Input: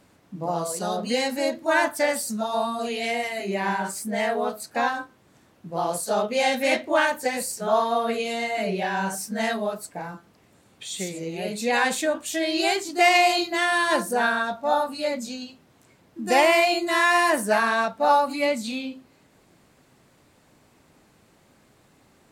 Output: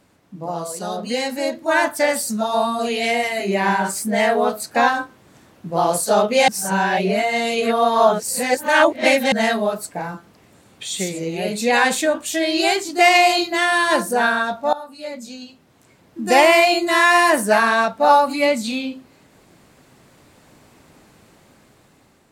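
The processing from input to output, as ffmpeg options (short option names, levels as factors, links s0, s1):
-filter_complex "[0:a]asplit=4[s0][s1][s2][s3];[s0]atrim=end=6.482[s4];[s1]atrim=start=6.478:end=9.322,asetpts=PTS-STARTPTS,areverse[s5];[s2]atrim=start=9.318:end=14.73,asetpts=PTS-STARTPTS,afade=t=out:st=5.408:d=0.004:c=hsin:silence=0.141254[s6];[s3]atrim=start=14.73,asetpts=PTS-STARTPTS,afade=t=in:d=1.48:silence=0.141254[s7];[s4][s5]acrossfade=d=0.004:c1=hsin:c2=hsin[s8];[s6][s7]concat=n=2:v=0:a=1[s9];[s8][s9]acrossfade=d=0.004:c1=hsin:c2=hsin,dynaudnorm=f=760:g=5:m=2.99"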